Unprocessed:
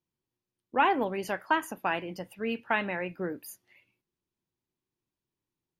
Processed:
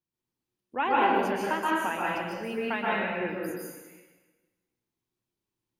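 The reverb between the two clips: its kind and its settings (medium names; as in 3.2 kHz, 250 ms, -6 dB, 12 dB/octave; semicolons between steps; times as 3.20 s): plate-style reverb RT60 1.3 s, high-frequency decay 0.9×, pre-delay 115 ms, DRR -6 dB; trim -5 dB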